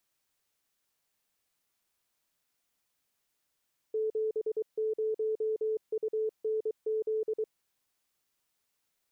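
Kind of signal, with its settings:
Morse code "70UNZ" 23 words per minute 436 Hz −27.5 dBFS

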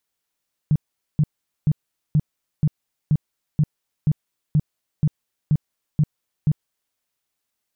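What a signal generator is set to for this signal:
tone bursts 151 Hz, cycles 7, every 0.48 s, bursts 13, −13 dBFS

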